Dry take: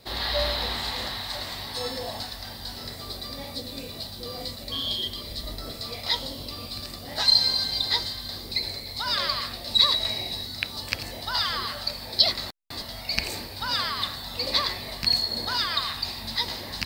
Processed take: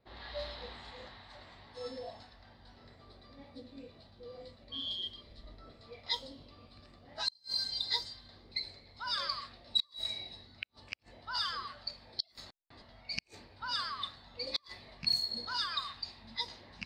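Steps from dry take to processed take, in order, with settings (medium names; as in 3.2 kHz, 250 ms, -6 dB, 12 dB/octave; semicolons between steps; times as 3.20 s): spectral noise reduction 9 dB; level-controlled noise filter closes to 2 kHz, open at -21 dBFS; inverted gate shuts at -11 dBFS, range -37 dB; trim -7.5 dB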